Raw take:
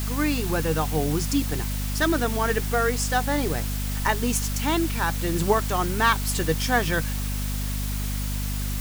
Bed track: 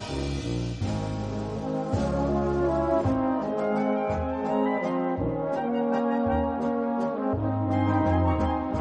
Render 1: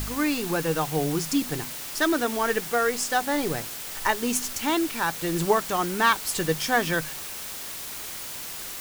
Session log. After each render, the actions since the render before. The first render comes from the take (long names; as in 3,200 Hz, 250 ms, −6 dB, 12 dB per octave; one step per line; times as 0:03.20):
hum removal 50 Hz, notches 5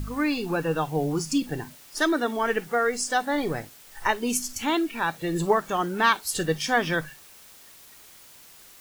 noise reduction from a noise print 14 dB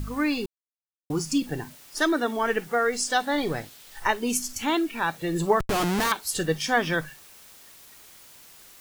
0:00.46–0:01.10: silence
0:02.92–0:04.00: parametric band 3,700 Hz +5.5 dB 0.87 octaves
0:05.60–0:06.12: comparator with hysteresis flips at −33.5 dBFS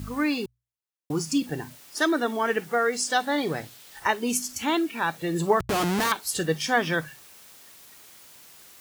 high-pass filter 63 Hz
mains-hum notches 60/120 Hz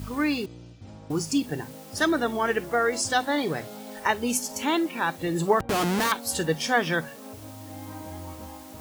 mix in bed track −16 dB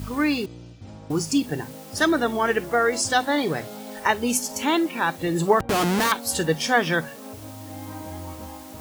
level +3 dB